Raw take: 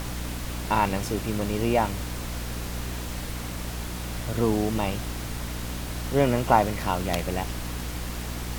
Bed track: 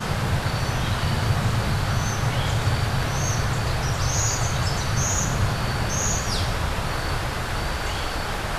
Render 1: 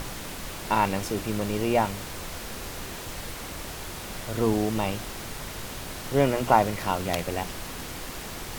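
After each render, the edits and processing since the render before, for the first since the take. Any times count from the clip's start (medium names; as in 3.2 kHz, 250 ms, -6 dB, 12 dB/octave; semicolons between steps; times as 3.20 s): hum notches 60/120/180/240/300 Hz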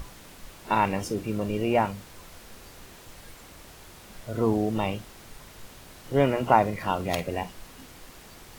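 noise print and reduce 11 dB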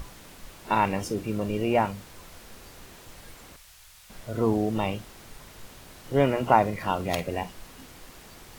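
3.56–4.10 s: amplifier tone stack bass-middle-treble 10-0-10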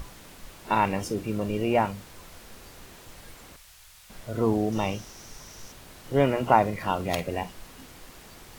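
4.72–5.72 s: peaking EQ 5.8 kHz +13.5 dB 0.33 oct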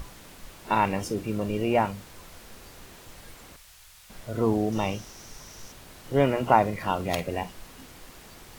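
bit crusher 11-bit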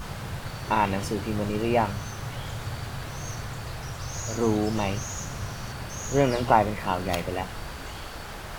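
add bed track -11.5 dB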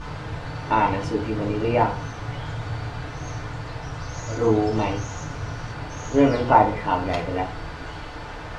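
distance through air 110 m; FDN reverb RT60 0.39 s, low-frequency decay 0.8×, high-frequency decay 0.5×, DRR -1 dB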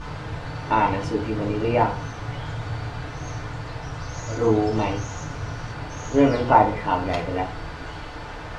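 no audible change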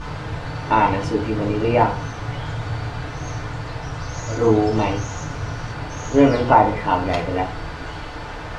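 trim +3.5 dB; peak limiter -2 dBFS, peak gain reduction 2.5 dB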